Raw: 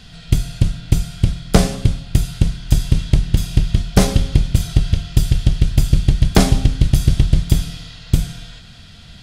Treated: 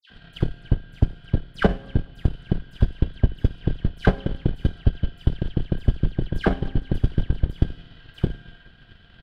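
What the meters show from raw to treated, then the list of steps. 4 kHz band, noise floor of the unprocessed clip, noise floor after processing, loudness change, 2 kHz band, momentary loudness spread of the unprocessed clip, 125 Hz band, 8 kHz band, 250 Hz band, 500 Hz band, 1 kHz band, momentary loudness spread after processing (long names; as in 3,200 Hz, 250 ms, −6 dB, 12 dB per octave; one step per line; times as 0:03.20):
−14.5 dB, −40 dBFS, −51 dBFS, −8.0 dB, −3.5 dB, 6 LU, −8.5 dB, below −30 dB, −6.5 dB, −4.0 dB, −6.0 dB, 6 LU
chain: sub-octave generator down 2 octaves, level +1 dB
high-frequency loss of the air 470 metres
in parallel at −2 dB: downward compressor, threshold −16 dBFS, peak gain reduction 13 dB
on the sum: bass and treble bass −7 dB, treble +5 dB
hollow resonant body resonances 1,600/3,000 Hz, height 15 dB, ringing for 35 ms
all-pass dispersion lows, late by 103 ms, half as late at 2,500 Hz
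on a send: repeating echo 217 ms, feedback 59%, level −22 dB
on the sum: transient designer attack +10 dB, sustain −4 dB
level −12.5 dB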